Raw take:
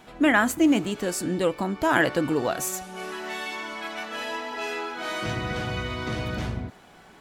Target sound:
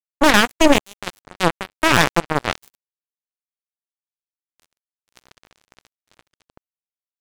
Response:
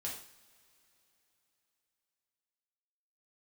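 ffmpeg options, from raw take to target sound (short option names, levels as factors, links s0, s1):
-af "acrusher=bits=2:mix=0:aa=0.5,aeval=exprs='0.422*(cos(1*acos(clip(val(0)/0.422,-1,1)))-cos(1*PI/2))+0.188*(cos(4*acos(clip(val(0)/0.422,-1,1)))-cos(4*PI/2))':c=same,volume=1.26"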